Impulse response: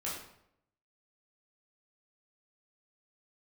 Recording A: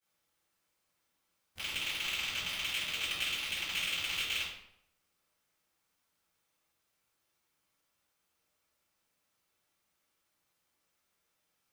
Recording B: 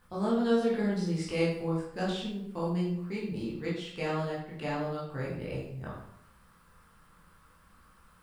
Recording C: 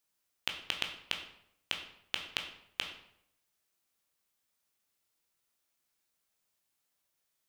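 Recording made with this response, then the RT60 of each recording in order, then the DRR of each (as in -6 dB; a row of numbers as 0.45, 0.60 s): B; 0.75, 0.75, 0.75 s; -17.0, -7.0, 3.0 dB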